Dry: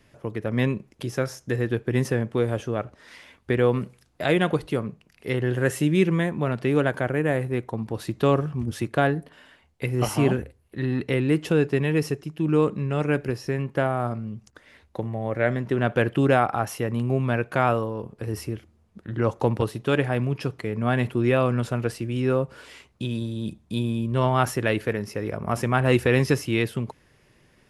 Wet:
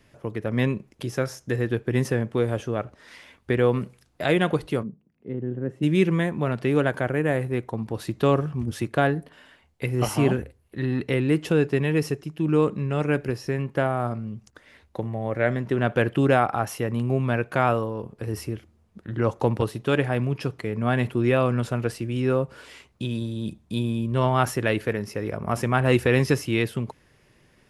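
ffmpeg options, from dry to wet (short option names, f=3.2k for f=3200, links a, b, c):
-filter_complex "[0:a]asplit=3[a][b][c];[a]afade=t=out:st=4.82:d=0.02[d];[b]bandpass=f=220:t=q:w=1.5,afade=t=in:st=4.82:d=0.02,afade=t=out:st=5.82:d=0.02[e];[c]afade=t=in:st=5.82:d=0.02[f];[d][e][f]amix=inputs=3:normalize=0"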